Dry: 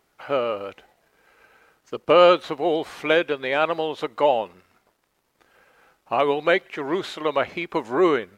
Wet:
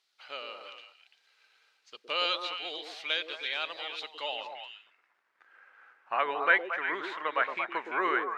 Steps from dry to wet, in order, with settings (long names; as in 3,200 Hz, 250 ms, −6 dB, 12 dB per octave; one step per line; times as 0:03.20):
band-pass filter sweep 4,100 Hz → 1,600 Hz, 0:04.20–0:04.84
echo through a band-pass that steps 114 ms, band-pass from 340 Hz, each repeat 1.4 octaves, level −1 dB
level +2.5 dB